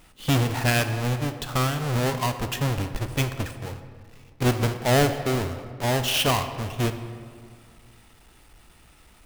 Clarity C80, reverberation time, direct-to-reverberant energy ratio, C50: 10.5 dB, 2.0 s, 8.5 dB, 9.5 dB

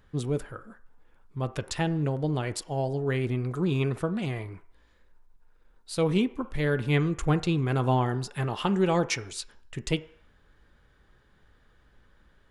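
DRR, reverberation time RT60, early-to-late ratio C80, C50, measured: 11.0 dB, 0.65 s, 20.0 dB, 16.0 dB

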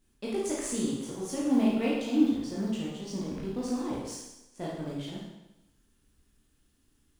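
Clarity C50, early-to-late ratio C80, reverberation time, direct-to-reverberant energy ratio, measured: -0.5 dB, 3.5 dB, 0.95 s, -5.5 dB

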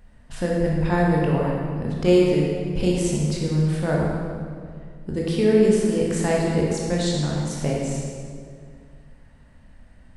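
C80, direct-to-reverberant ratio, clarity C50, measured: 1.0 dB, -3.5 dB, -0.5 dB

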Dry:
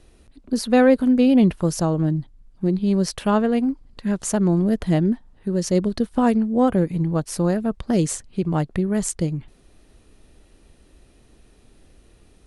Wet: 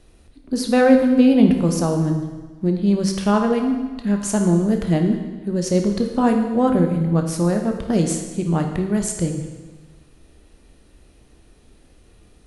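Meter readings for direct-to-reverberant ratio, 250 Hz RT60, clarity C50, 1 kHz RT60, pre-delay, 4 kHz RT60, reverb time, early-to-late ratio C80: 3.5 dB, 1.3 s, 6.0 dB, 1.3 s, 16 ms, 1.2 s, 1.3 s, 8.0 dB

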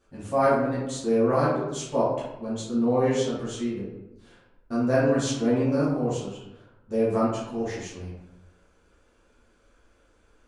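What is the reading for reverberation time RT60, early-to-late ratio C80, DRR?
0.95 s, 4.0 dB, -11.0 dB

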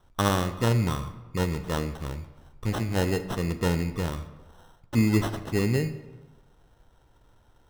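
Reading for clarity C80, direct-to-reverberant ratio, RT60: 14.0 dB, 10.0 dB, 1.2 s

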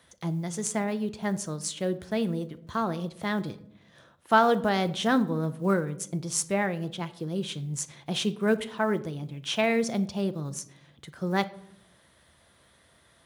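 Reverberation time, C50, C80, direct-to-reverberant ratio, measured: 0.75 s, 16.5 dB, 20.0 dB, 11.0 dB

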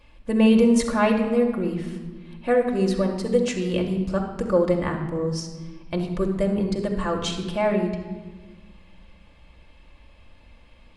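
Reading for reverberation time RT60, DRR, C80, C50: 1.4 s, 1.0 dB, 8.5 dB, 6.5 dB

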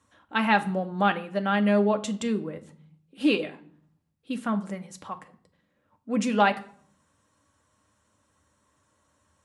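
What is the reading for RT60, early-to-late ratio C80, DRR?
0.55 s, 20.5 dB, 6.5 dB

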